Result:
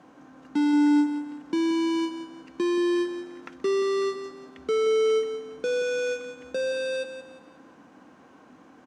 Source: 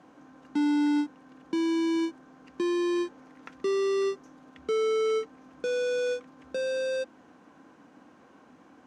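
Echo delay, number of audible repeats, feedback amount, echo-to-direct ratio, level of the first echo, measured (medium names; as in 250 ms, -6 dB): 177 ms, 3, 35%, -9.5 dB, -10.0 dB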